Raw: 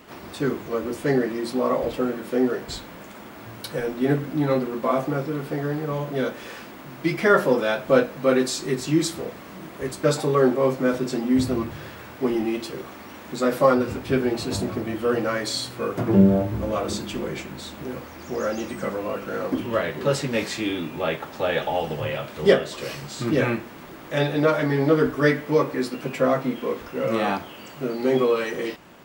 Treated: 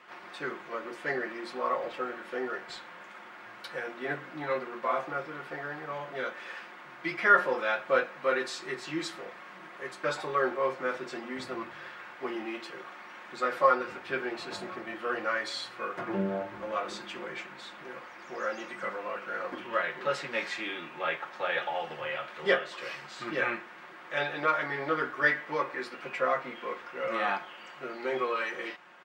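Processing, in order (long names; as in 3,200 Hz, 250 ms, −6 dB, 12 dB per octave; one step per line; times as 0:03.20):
resonant band-pass 1,600 Hz, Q 1.1
comb filter 5.6 ms, depth 45%
level −1 dB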